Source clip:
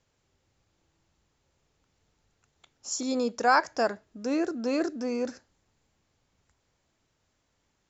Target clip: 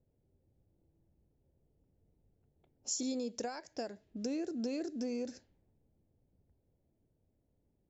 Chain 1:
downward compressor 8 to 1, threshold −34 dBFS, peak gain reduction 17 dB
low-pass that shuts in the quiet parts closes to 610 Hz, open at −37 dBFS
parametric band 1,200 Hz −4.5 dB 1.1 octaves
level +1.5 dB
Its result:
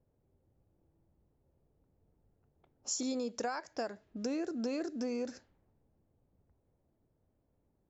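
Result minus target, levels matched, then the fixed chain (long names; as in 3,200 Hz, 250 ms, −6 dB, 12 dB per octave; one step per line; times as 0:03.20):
1,000 Hz band +4.0 dB
downward compressor 8 to 1, threshold −34 dBFS, peak gain reduction 17 dB
low-pass that shuts in the quiet parts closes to 610 Hz, open at −37 dBFS
parametric band 1,200 Hz −16 dB 1.1 octaves
level +1.5 dB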